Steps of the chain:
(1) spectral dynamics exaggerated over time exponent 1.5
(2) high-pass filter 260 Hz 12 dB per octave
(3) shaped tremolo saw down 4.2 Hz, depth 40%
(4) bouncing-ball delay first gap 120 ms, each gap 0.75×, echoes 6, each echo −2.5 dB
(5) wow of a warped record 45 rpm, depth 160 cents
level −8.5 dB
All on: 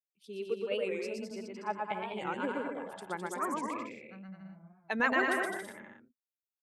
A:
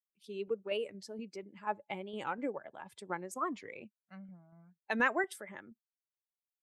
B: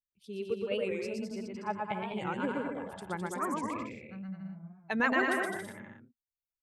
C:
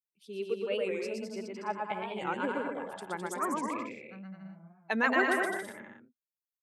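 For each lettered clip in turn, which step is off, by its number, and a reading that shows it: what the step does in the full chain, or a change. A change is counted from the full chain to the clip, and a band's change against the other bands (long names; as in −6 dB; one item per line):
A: 4, change in crest factor +1.5 dB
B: 2, 125 Hz band +7.0 dB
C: 3, change in integrated loudness +2.0 LU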